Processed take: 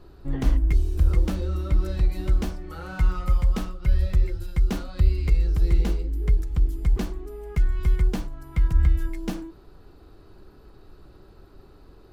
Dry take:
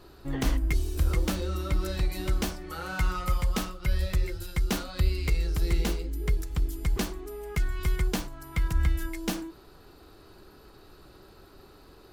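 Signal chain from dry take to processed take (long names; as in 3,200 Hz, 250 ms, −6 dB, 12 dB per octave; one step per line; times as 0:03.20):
spectral tilt −2 dB per octave
level −2.5 dB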